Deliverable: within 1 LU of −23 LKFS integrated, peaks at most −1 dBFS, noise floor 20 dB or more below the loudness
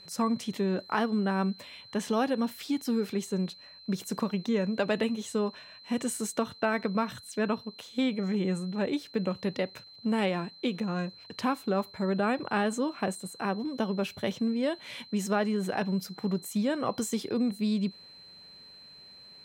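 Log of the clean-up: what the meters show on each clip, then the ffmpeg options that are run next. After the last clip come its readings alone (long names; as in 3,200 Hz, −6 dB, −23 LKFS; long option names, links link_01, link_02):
interfering tone 4,100 Hz; level of the tone −49 dBFS; integrated loudness −31.0 LKFS; sample peak −12.5 dBFS; target loudness −23.0 LKFS
→ -af "bandreject=frequency=4100:width=30"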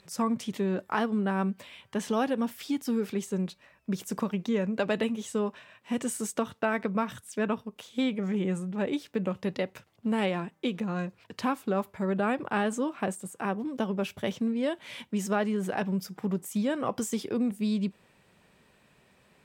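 interfering tone none found; integrated loudness −31.0 LKFS; sample peak −12.5 dBFS; target loudness −23.0 LKFS
→ -af "volume=8dB"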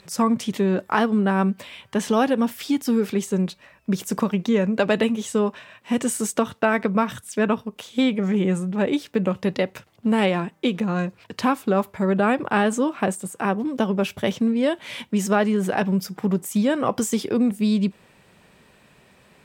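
integrated loudness −23.0 LKFS; sample peak −4.5 dBFS; background noise floor −56 dBFS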